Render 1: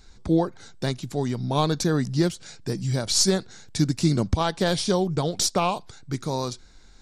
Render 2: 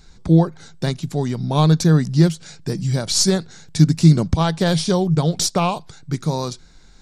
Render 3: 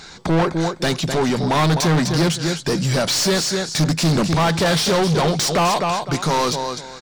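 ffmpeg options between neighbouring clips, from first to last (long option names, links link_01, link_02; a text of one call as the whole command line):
ffmpeg -i in.wav -af "equalizer=frequency=160:width_type=o:width=0.24:gain=11.5,volume=3dB" out.wav
ffmpeg -i in.wav -filter_complex "[0:a]aecho=1:1:254|508:0.237|0.0427,asplit=2[link_01][link_02];[link_02]highpass=frequency=720:poles=1,volume=33dB,asoftclip=type=tanh:threshold=-1.5dB[link_03];[link_01][link_03]amix=inputs=2:normalize=0,lowpass=frequency=4100:poles=1,volume=-6dB,volume=-8dB" out.wav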